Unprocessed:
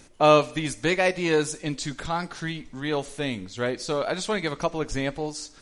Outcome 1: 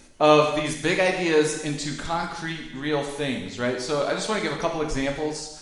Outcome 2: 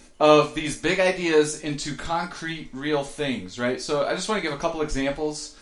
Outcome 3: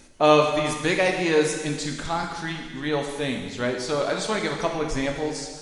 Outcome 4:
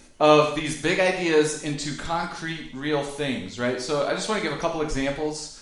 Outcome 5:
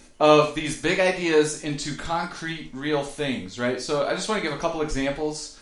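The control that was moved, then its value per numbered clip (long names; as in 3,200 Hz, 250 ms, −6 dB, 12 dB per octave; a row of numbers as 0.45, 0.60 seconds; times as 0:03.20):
reverb whose tail is shaped and stops, gate: 350, 100, 520, 240, 150 milliseconds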